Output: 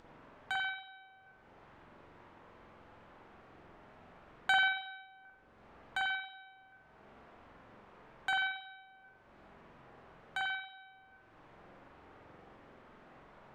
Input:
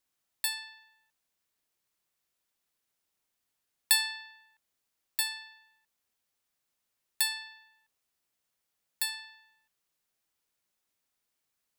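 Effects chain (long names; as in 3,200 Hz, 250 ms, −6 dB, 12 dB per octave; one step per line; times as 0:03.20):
low-pass filter 1,300 Hz 12 dB per octave
upward compression, threshold −53 dBFS
speed change −13%
convolution reverb RT60 0.70 s, pre-delay 45 ms, DRR −4 dB
level +8.5 dB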